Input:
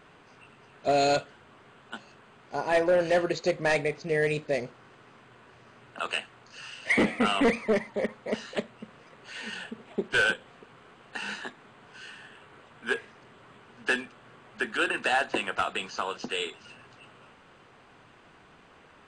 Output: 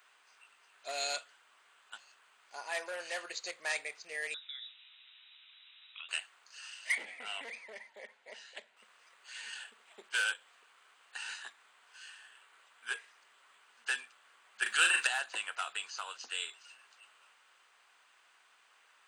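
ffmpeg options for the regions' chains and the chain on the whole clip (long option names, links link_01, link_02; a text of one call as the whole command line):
ffmpeg -i in.wav -filter_complex "[0:a]asettb=1/sr,asplit=3[link_01][link_02][link_03];[link_01]atrim=end=4.344[link_04];[link_02]atrim=start=4.34:end=6.09,asetpts=PTS-STARTPTS,afade=type=in:duration=0.004:curve=qsin,afade=type=out:start_time=1.746:duration=0.004:curve=qsin,acompressor=threshold=-36dB:ratio=12:attack=3.2:release=140:knee=1:detection=peak,asplit=2[link_05][link_06];[link_06]adelay=15,volume=-12dB[link_07];[link_05][link_07]amix=inputs=2:normalize=0,atrim=end_sample=77175,lowpass=frequency=3400:width_type=q:width=0.5098,lowpass=frequency=3400:width_type=q:width=0.6013,lowpass=frequency=3400:width_type=q:width=0.9,lowpass=frequency=3400:width_type=q:width=2.563,afreqshift=-4000[link_08];[link_03]atrim=start=6.086[link_09];[link_04][link_08]acrossfade=duration=0.004:curve1=hsin:curve2=qsin[link_10];[link_10][link_09]acrossfade=duration=0.004:curve1=qsin:curve2=hsin,asettb=1/sr,asplit=3[link_11][link_12][link_13];[link_11]atrim=end=6.954[link_14];[link_12]atrim=start=6.95:end=8.77,asetpts=PTS-STARTPTS,afade=type=in:duration=0.004:curve=qsin,afade=type=out:start_time=1.816:duration=0.004:curve=qsin,lowpass=frequency=2600:poles=1,equalizer=frequency=1200:width_type=o:width=0.29:gain=-14.5,acompressor=threshold=-25dB:ratio=6:attack=3.2:release=140:knee=1:detection=peak[link_15];[link_13]atrim=start=8.766[link_16];[link_14][link_15]acrossfade=duration=0.004:curve1=hsin:curve2=qsin[link_17];[link_17][link_16]acrossfade=duration=0.004:curve1=qsin:curve2=hsin,asettb=1/sr,asplit=3[link_18][link_19][link_20];[link_18]atrim=end=14.624[link_21];[link_19]atrim=start=14.62:end=15.07,asetpts=PTS-STARTPTS,afade=type=in:duration=0.004:curve=qsin,afade=type=out:start_time=0.446:duration=0.004:curve=qsin,highshelf=frequency=2600:gain=5,acontrast=44,asplit=2[link_22][link_23];[link_23]adelay=38,volume=-5dB[link_24];[link_22][link_24]amix=inputs=2:normalize=0,atrim=end_sample=19845[link_25];[link_20]atrim=start=15.066[link_26];[link_21][link_25]acrossfade=duration=0.004:curve1=hsin:curve2=qsin[link_27];[link_27][link_26]acrossfade=duration=0.004:curve1=qsin:curve2=hsin,highpass=1100,aemphasis=mode=production:type=50fm,volume=-7.5dB" out.wav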